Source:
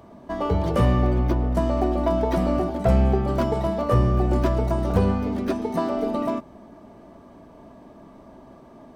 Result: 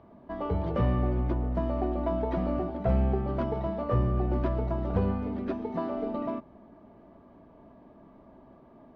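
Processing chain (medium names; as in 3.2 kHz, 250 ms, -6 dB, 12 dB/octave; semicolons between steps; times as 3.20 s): distance through air 290 m; trim -6.5 dB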